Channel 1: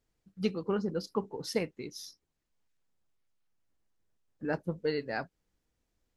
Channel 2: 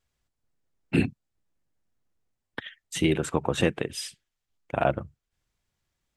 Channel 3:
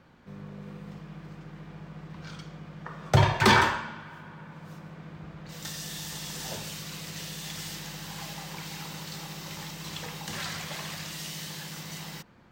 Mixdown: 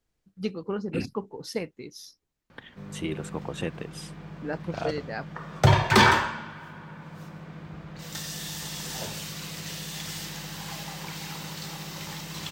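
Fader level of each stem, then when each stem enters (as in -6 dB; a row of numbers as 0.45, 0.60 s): 0.0, -8.5, +2.0 dB; 0.00, 0.00, 2.50 s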